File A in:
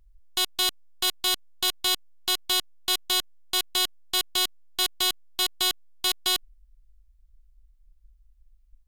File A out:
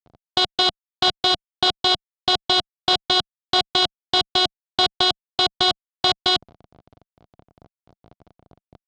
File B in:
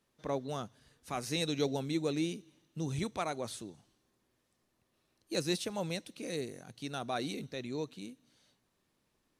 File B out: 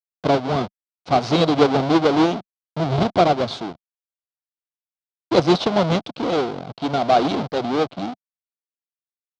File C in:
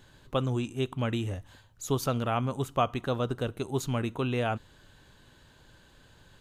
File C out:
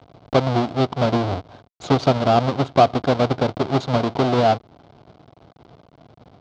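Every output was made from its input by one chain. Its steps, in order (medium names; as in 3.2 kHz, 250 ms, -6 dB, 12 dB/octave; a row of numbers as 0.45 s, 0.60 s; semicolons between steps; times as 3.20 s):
square wave that keeps the level; gate with hold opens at -51 dBFS; in parallel at -2 dB: compression, threshold -30 dBFS; on the sum: small samples zeroed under -45 dBFS; Chebyshev shaper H 8 -17 dB, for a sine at -11 dBFS; cabinet simulation 120–4500 Hz, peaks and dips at 200 Hz -3 dB, 700 Hz +8 dB, 1.8 kHz -9 dB, 2.6 kHz -6 dB; normalise loudness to -20 LUFS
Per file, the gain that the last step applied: +5.0 dB, +9.5 dB, +3.5 dB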